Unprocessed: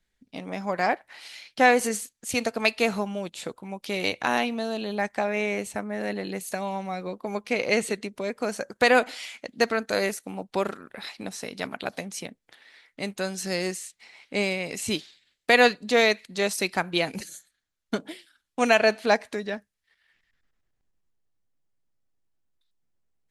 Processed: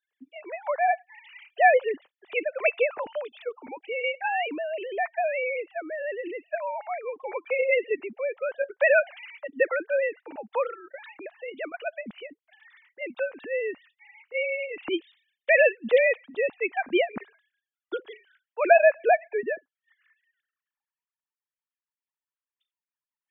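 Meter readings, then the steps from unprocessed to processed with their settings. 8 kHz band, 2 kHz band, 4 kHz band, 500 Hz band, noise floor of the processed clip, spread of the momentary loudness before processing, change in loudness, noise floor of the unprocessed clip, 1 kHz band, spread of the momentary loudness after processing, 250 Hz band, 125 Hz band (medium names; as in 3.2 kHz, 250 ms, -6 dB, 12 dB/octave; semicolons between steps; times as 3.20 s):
under -40 dB, -0.5 dB, -11.5 dB, +1.5 dB, under -85 dBFS, 17 LU, 0.0 dB, -78 dBFS, -0.5 dB, 19 LU, -9.0 dB, under -20 dB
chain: formants replaced by sine waves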